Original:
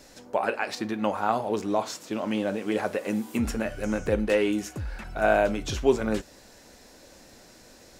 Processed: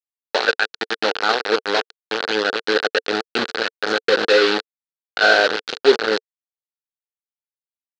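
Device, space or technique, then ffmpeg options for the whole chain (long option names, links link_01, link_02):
hand-held game console: -af "acrusher=bits=3:mix=0:aa=0.000001,highpass=440,equalizer=frequency=450:width_type=q:width=4:gain=8,equalizer=frequency=640:width_type=q:width=4:gain=-6,equalizer=frequency=1000:width_type=q:width=4:gain=-8,equalizer=frequency=1500:width_type=q:width=4:gain=8,equalizer=frequency=2200:width_type=q:width=4:gain=-5,equalizer=frequency=4200:width_type=q:width=4:gain=8,lowpass=frequency=4700:width=0.5412,lowpass=frequency=4700:width=1.3066,volume=7.5dB"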